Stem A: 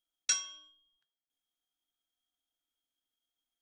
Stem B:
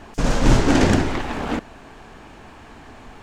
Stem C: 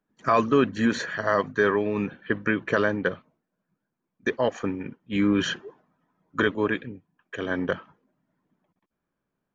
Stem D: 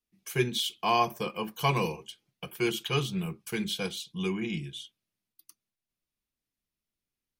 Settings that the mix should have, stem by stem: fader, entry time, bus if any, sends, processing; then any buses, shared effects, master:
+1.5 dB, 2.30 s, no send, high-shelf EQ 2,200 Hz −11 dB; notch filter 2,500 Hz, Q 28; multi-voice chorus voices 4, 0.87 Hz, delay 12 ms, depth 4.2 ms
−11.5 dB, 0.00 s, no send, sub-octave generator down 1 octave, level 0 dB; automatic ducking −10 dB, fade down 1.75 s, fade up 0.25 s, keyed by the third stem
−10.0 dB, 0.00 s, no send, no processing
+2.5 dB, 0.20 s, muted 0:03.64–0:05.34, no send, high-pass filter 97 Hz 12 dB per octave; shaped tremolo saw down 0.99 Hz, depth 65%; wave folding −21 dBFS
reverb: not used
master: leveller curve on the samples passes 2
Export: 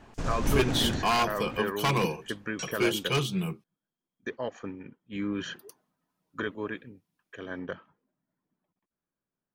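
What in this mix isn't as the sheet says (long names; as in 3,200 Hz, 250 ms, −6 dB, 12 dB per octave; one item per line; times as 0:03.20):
stem D: missing shaped tremolo saw down 0.99 Hz, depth 65%
master: missing leveller curve on the samples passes 2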